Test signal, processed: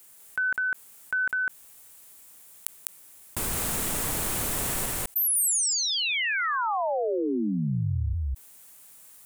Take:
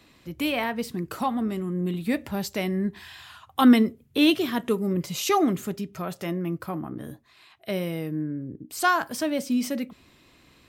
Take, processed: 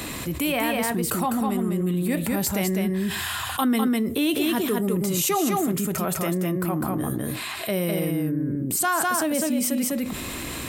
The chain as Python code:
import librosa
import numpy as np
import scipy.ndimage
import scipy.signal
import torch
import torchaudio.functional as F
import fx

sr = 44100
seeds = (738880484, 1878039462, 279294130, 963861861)

y = fx.high_shelf_res(x, sr, hz=6700.0, db=8.0, q=1.5)
y = y + 10.0 ** (-3.5 / 20.0) * np.pad(y, (int(202 * sr / 1000.0), 0))[:len(y)]
y = fx.env_flatten(y, sr, amount_pct=70)
y = y * librosa.db_to_amplitude(-8.0)